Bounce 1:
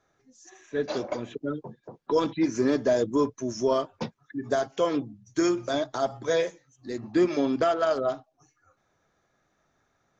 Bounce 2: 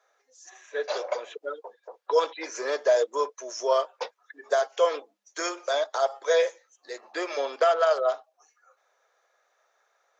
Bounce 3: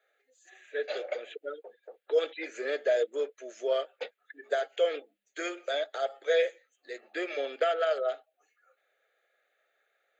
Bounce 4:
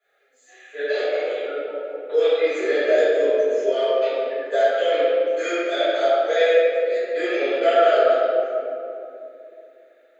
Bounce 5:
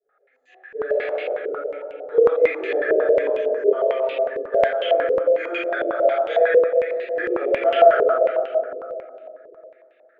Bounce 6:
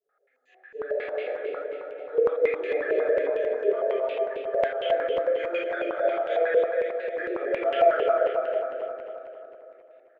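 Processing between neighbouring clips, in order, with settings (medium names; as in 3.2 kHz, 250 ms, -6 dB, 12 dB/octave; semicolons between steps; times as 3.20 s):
elliptic high-pass 480 Hz, stop band 80 dB; trim +3.5 dB
static phaser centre 2.4 kHz, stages 4
reverberation RT60 2.7 s, pre-delay 4 ms, DRR -17 dB; trim -8.5 dB
step-sequenced low-pass 11 Hz 430–2800 Hz; trim -5 dB
feedback delay 267 ms, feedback 52%, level -6.5 dB; trim -7 dB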